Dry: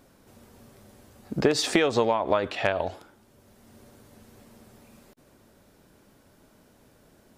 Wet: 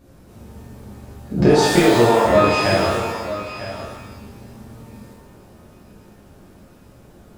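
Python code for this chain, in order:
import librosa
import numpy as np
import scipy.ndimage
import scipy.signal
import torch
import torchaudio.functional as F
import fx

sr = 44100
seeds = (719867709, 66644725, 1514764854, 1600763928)

y = fx.low_shelf(x, sr, hz=310.0, db=11.5)
y = y + 10.0 ** (-12.5 / 20.0) * np.pad(y, (int(949 * sr / 1000.0), 0))[:len(y)]
y = fx.rev_shimmer(y, sr, seeds[0], rt60_s=1.0, semitones=12, shimmer_db=-8, drr_db=-8.0)
y = F.gain(torch.from_numpy(y), -4.0).numpy()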